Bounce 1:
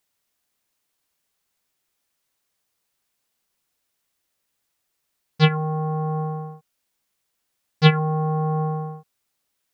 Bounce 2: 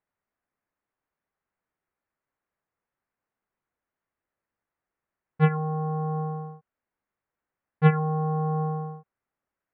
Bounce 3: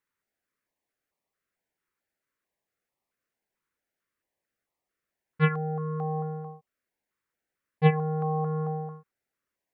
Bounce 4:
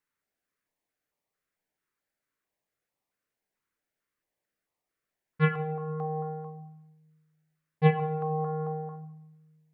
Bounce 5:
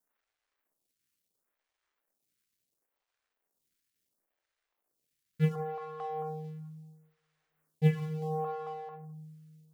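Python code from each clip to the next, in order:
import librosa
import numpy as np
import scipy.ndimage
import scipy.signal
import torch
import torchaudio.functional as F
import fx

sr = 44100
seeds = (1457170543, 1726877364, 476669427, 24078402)

y1 = scipy.signal.sosfilt(scipy.signal.butter(4, 1900.0, 'lowpass', fs=sr, output='sos'), x)
y1 = F.gain(torch.from_numpy(y1), -3.5).numpy()
y2 = fx.low_shelf(y1, sr, hz=320.0, db=-9.0)
y2 = fx.filter_held_notch(y2, sr, hz=4.5, low_hz=700.0, high_hz=1500.0)
y2 = F.gain(torch.from_numpy(y2), 4.5).numpy()
y3 = fx.room_shoebox(y2, sr, seeds[0], volume_m3=330.0, walls='mixed', distance_m=0.45)
y3 = F.gain(torch.from_numpy(y3), -1.5).numpy()
y4 = fx.law_mismatch(y3, sr, coded='mu')
y4 = fx.stagger_phaser(y4, sr, hz=0.72)
y4 = F.gain(torch.from_numpy(y4), -2.5).numpy()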